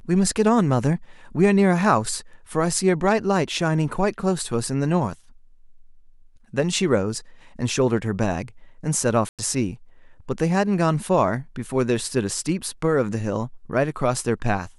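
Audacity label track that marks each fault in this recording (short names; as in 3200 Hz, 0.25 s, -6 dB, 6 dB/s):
9.290000	9.390000	gap 97 ms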